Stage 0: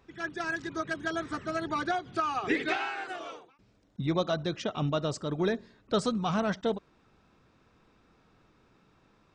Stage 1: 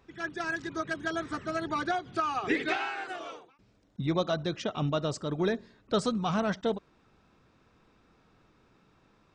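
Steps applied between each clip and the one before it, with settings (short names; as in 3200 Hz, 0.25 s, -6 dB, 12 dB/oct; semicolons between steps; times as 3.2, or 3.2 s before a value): nothing audible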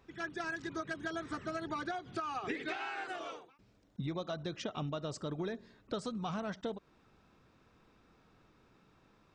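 compressor 6:1, threshold -33 dBFS, peak gain reduction 11 dB; gain -2 dB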